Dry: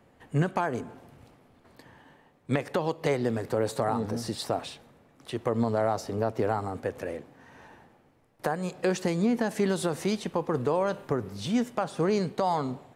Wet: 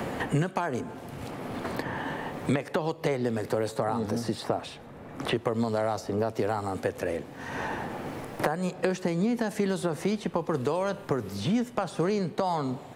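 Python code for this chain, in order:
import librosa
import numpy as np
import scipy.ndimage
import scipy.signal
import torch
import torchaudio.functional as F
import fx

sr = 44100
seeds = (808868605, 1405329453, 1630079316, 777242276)

y = fx.band_squash(x, sr, depth_pct=100)
y = y * librosa.db_to_amplitude(-1.0)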